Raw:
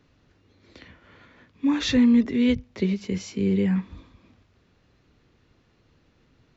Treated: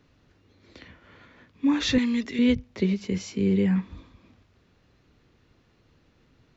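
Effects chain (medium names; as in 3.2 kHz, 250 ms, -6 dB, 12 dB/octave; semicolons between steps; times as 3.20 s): 1.98–2.39 s: tilt shelf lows -9 dB, about 1.5 kHz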